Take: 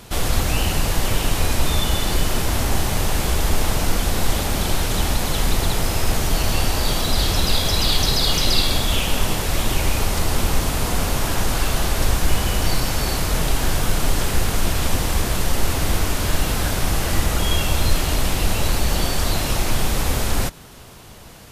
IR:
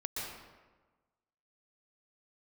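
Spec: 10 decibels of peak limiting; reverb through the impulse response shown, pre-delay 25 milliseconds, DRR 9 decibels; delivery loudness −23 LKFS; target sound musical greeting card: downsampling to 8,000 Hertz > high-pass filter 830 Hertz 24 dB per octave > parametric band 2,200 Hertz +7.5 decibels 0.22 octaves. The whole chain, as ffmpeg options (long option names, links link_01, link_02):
-filter_complex "[0:a]alimiter=limit=-14dB:level=0:latency=1,asplit=2[link_01][link_02];[1:a]atrim=start_sample=2205,adelay=25[link_03];[link_02][link_03]afir=irnorm=-1:irlink=0,volume=-11.5dB[link_04];[link_01][link_04]amix=inputs=2:normalize=0,aresample=8000,aresample=44100,highpass=frequency=830:width=0.5412,highpass=frequency=830:width=1.3066,equalizer=frequency=2200:width_type=o:width=0.22:gain=7.5,volume=7dB"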